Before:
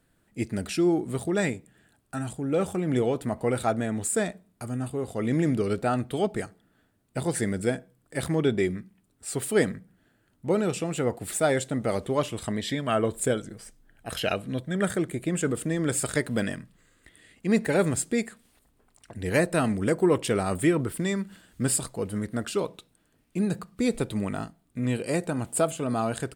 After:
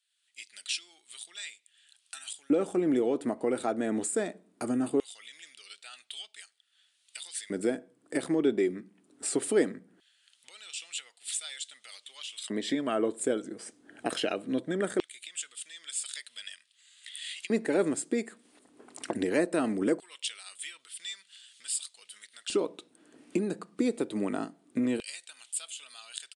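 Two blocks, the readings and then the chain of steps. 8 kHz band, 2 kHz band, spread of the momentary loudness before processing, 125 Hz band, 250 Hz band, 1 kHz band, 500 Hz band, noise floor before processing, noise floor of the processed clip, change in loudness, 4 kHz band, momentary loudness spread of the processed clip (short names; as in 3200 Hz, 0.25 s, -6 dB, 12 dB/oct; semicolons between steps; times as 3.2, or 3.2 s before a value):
-3.5 dB, -7.0 dB, 12 LU, -16.5 dB, -4.5 dB, -8.0 dB, -5.0 dB, -68 dBFS, -70 dBFS, -4.5 dB, +0.5 dB, 19 LU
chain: recorder AGC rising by 27 dB/s; downsampling 22050 Hz; LFO high-pass square 0.2 Hz 300–3300 Hz; gain -7 dB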